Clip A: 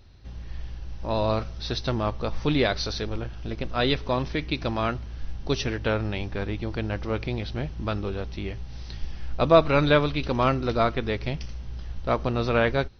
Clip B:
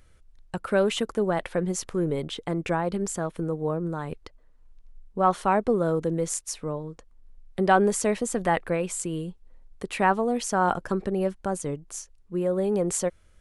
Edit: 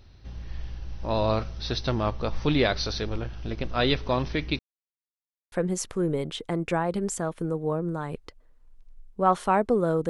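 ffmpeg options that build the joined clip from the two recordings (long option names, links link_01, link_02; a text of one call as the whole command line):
ffmpeg -i cue0.wav -i cue1.wav -filter_complex "[0:a]apad=whole_dur=10.09,atrim=end=10.09,asplit=2[link_01][link_02];[link_01]atrim=end=4.59,asetpts=PTS-STARTPTS,afade=type=out:start_time=4.586:duration=0.004:curve=hsin[link_03];[link_02]atrim=start=4.59:end=5.52,asetpts=PTS-STARTPTS,volume=0[link_04];[1:a]atrim=start=1.5:end=6.07,asetpts=PTS-STARTPTS,afade=type=in:duration=0.004:curve=hsin[link_05];[link_03][link_04][link_05]concat=n=3:v=0:a=1" out.wav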